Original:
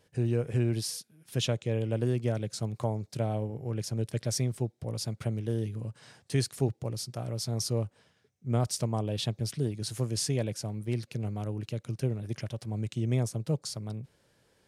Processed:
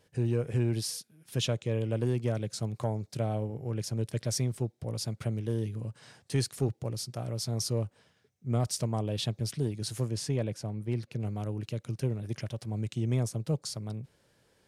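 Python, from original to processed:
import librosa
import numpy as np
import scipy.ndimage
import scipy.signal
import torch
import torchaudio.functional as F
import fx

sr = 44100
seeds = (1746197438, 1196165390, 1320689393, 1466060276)

y = fx.high_shelf(x, sr, hz=3500.0, db=-8.5, at=(10.08, 11.2))
y = 10.0 ** (-15.5 / 20.0) * np.tanh(y / 10.0 ** (-15.5 / 20.0))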